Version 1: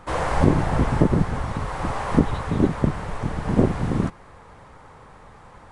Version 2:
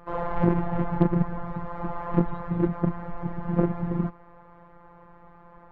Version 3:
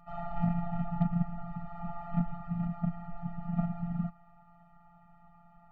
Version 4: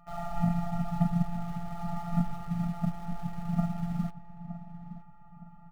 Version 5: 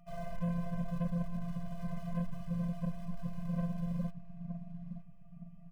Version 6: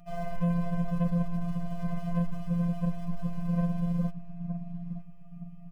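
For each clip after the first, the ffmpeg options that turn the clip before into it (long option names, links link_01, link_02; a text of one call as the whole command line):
ffmpeg -i in.wav -af "afftfilt=real='hypot(re,im)*cos(PI*b)':imag='0':win_size=1024:overlap=0.75,lowpass=1500,aeval=exprs='0.596*(cos(1*acos(clip(val(0)/0.596,-1,1)))-cos(1*PI/2))+0.0211*(cos(8*acos(clip(val(0)/0.596,-1,1)))-cos(8*PI/2))':channel_layout=same" out.wav
ffmpeg -i in.wav -af "afftfilt=real='re*eq(mod(floor(b*sr/1024/290),2),0)':imag='im*eq(mod(floor(b*sr/1024/290),2),0)':win_size=1024:overlap=0.75,volume=-6dB" out.wav
ffmpeg -i in.wav -filter_complex "[0:a]asplit=2[link_01][link_02];[link_02]acrusher=bits=6:mix=0:aa=0.000001,volume=-11.5dB[link_03];[link_01][link_03]amix=inputs=2:normalize=0,asplit=2[link_04][link_05];[link_05]adelay=916,lowpass=frequency=1700:poles=1,volume=-12.5dB,asplit=2[link_06][link_07];[link_07]adelay=916,lowpass=frequency=1700:poles=1,volume=0.39,asplit=2[link_08][link_09];[link_09]adelay=916,lowpass=frequency=1700:poles=1,volume=0.39,asplit=2[link_10][link_11];[link_11]adelay=916,lowpass=frequency=1700:poles=1,volume=0.39[link_12];[link_04][link_06][link_08][link_10][link_12]amix=inputs=5:normalize=0" out.wav
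ffmpeg -i in.wav -af "asoftclip=type=tanh:threshold=-30dB,afftfilt=real='re*eq(mod(floor(b*sr/1024/240),2),0)':imag='im*eq(mod(floor(b*sr/1024/240),2),0)':win_size=1024:overlap=0.75" out.wav
ffmpeg -i in.wav -af "afftfilt=real='hypot(re,im)*cos(PI*b)':imag='0':win_size=1024:overlap=0.75,volume=7.5dB" out.wav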